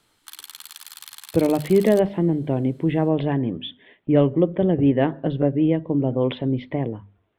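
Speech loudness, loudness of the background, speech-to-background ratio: -21.5 LUFS, -39.5 LUFS, 18.0 dB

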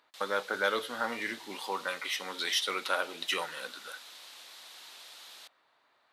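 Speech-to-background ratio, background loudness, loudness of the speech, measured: 15.0 dB, -48.0 LUFS, -33.0 LUFS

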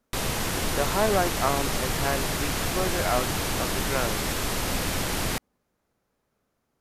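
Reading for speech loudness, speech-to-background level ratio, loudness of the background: -30.0 LUFS, -2.5 dB, -27.5 LUFS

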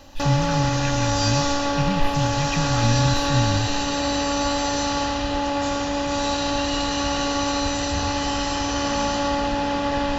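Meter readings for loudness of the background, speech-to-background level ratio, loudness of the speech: -23.0 LUFS, -2.5 dB, -25.5 LUFS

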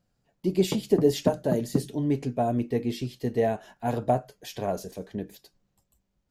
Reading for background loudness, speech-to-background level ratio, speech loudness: -33.0 LUFS, 5.0 dB, -28.0 LUFS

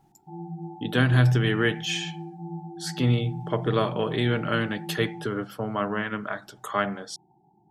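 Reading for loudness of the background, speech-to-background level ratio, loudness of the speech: -38.0 LUFS, 12.0 dB, -26.0 LUFS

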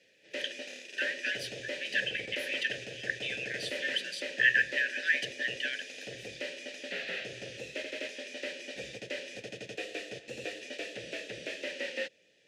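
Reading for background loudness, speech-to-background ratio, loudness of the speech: -39.5 LUFS, 7.5 dB, -32.0 LUFS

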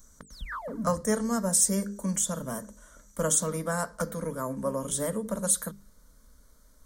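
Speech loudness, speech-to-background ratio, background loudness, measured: -28.0 LUFS, 11.0 dB, -39.0 LUFS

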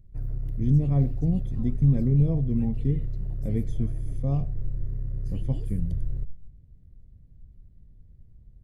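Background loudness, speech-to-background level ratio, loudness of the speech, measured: -34.5 LUFS, 7.5 dB, -27.0 LUFS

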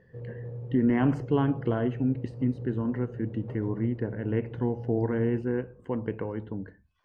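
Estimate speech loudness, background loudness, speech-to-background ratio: -29.5 LUFS, -40.0 LUFS, 10.5 dB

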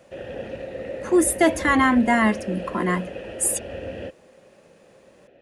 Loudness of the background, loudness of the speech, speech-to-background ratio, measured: -33.5 LUFS, -21.0 LUFS, 12.5 dB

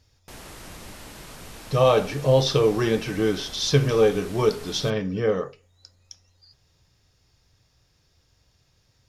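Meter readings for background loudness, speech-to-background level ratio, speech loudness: -42.0 LUFS, 19.5 dB, -22.5 LUFS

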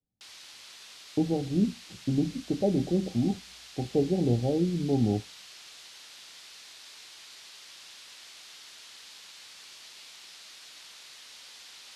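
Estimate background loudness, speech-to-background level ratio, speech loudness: -46.0 LUFS, 17.0 dB, -29.0 LUFS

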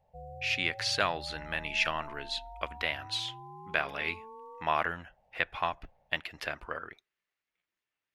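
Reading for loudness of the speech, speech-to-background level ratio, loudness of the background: -33.0 LUFS, 14.0 dB, -47.0 LUFS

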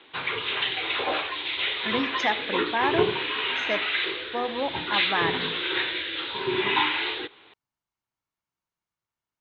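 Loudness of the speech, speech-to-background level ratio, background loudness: -30.0 LUFS, -3.5 dB, -26.5 LUFS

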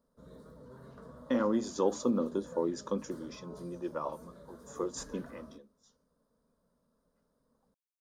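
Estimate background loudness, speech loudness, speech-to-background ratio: -52.5 LUFS, -34.5 LUFS, 18.0 dB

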